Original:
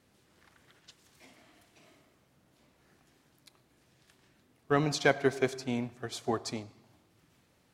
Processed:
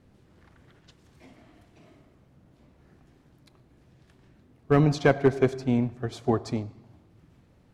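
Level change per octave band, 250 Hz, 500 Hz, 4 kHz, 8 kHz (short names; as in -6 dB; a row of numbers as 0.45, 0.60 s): +8.5, +6.0, -3.0, -5.0 dB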